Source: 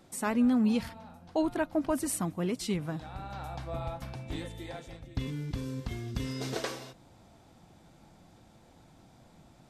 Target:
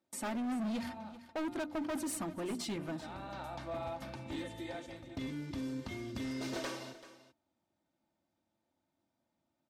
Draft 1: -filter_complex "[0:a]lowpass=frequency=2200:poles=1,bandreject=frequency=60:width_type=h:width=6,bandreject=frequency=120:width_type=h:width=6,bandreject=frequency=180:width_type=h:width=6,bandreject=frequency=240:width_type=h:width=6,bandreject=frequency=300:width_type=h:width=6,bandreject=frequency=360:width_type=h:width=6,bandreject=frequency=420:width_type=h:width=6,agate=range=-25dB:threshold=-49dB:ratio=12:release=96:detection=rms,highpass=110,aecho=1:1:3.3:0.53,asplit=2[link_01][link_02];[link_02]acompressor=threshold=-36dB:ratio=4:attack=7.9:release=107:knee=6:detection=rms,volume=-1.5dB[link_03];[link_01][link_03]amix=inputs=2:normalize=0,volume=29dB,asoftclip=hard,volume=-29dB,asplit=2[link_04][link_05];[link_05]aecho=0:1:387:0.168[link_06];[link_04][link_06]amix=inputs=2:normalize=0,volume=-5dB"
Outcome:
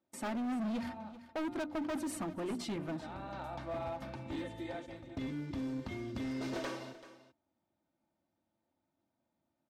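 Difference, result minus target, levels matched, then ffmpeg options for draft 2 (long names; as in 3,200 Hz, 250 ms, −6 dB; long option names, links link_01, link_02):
8,000 Hz band −5.5 dB; downward compressor: peak gain reduction −5.5 dB
-filter_complex "[0:a]lowpass=frequency=6600:poles=1,bandreject=frequency=60:width_type=h:width=6,bandreject=frequency=120:width_type=h:width=6,bandreject=frequency=180:width_type=h:width=6,bandreject=frequency=240:width_type=h:width=6,bandreject=frequency=300:width_type=h:width=6,bandreject=frequency=360:width_type=h:width=6,bandreject=frequency=420:width_type=h:width=6,agate=range=-25dB:threshold=-49dB:ratio=12:release=96:detection=rms,highpass=110,aecho=1:1:3.3:0.53,asplit=2[link_01][link_02];[link_02]acompressor=threshold=-43dB:ratio=4:attack=7.9:release=107:knee=6:detection=rms,volume=-1.5dB[link_03];[link_01][link_03]amix=inputs=2:normalize=0,volume=29dB,asoftclip=hard,volume=-29dB,asplit=2[link_04][link_05];[link_05]aecho=0:1:387:0.168[link_06];[link_04][link_06]amix=inputs=2:normalize=0,volume=-5dB"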